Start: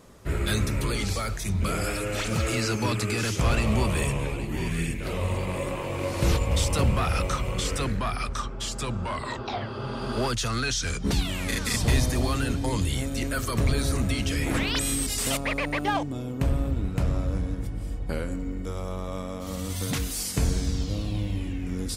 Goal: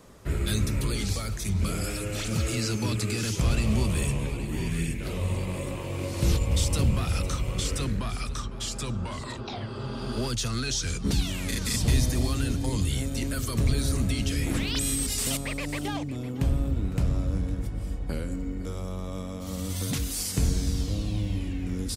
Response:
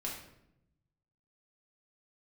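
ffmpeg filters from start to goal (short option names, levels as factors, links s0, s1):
-filter_complex "[0:a]acrossover=split=370|3000[s0][s1][s2];[s1]acompressor=threshold=0.00562:ratio=2[s3];[s0][s3][s2]amix=inputs=3:normalize=0,asplit=2[s4][s5];[s5]aecho=0:1:507:0.158[s6];[s4][s6]amix=inputs=2:normalize=0"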